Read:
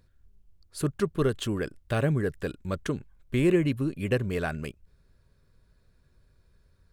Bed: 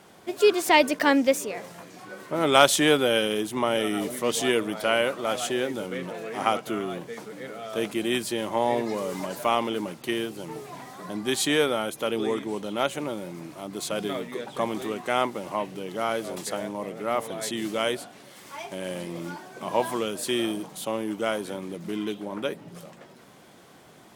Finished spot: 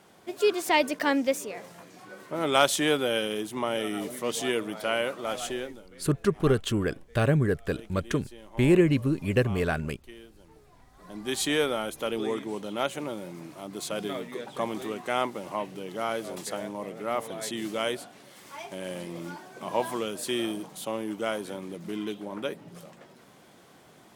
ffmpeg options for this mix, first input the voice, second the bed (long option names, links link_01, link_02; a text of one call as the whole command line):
ffmpeg -i stem1.wav -i stem2.wav -filter_complex "[0:a]adelay=5250,volume=2.5dB[link_01];[1:a]volume=12dB,afade=type=out:start_time=5.49:duration=0.33:silence=0.177828,afade=type=in:start_time=10.92:duration=0.48:silence=0.149624[link_02];[link_01][link_02]amix=inputs=2:normalize=0" out.wav